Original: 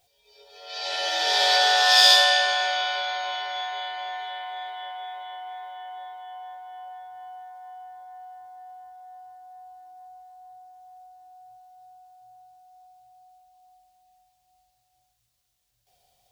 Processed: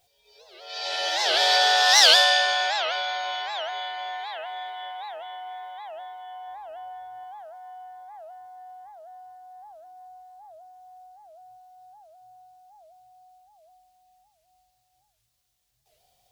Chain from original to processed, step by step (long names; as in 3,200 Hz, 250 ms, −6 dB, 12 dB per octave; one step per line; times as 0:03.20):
0:06.47–0:07.24: low-shelf EQ 320 Hz +8.5 dB
wow of a warped record 78 rpm, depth 250 cents